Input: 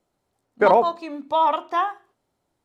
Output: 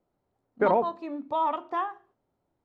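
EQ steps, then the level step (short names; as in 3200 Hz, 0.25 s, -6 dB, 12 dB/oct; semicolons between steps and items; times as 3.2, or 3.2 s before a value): LPF 1000 Hz 6 dB/oct; dynamic EQ 630 Hz, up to -5 dB, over -30 dBFS, Q 0.93; -1.5 dB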